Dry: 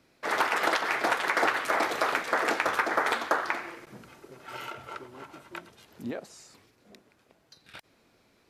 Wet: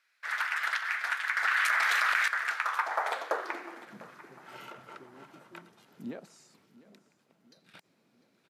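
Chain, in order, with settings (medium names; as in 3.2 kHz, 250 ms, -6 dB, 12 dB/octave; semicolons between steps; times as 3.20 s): high-pass sweep 1.6 kHz -> 170 Hz, 2.46–4.04 s; feedback delay 700 ms, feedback 50%, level -19 dB; 1.44–2.28 s: level flattener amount 100%; trim -8 dB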